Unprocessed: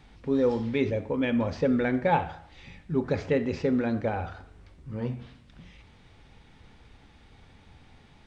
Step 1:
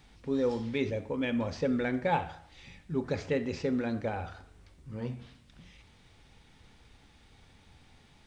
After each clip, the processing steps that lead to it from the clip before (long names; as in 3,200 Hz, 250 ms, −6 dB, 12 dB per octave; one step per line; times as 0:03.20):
high-shelf EQ 4,600 Hz +11 dB
level −5 dB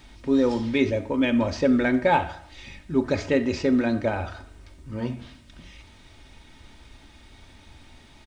comb filter 3.2 ms, depth 48%
level +8 dB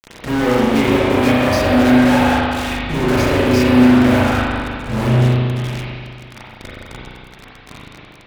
fuzz pedal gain 48 dB, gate −41 dBFS
spring reverb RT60 2.2 s, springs 32/40 ms, chirp 60 ms, DRR −8 dB
level −8.5 dB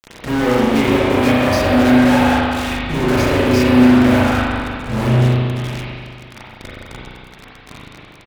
single-tap delay 332 ms −23 dB